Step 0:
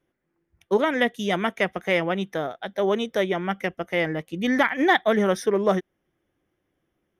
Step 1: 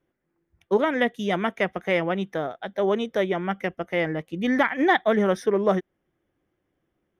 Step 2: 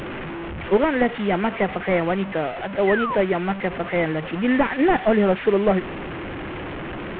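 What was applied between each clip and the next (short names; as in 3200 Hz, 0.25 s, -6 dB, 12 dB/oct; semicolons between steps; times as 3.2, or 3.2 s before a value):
high shelf 3600 Hz -8 dB
delta modulation 16 kbps, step -28.5 dBFS; painted sound fall, 2.87–3.16, 910–2100 Hz -29 dBFS; gain +3.5 dB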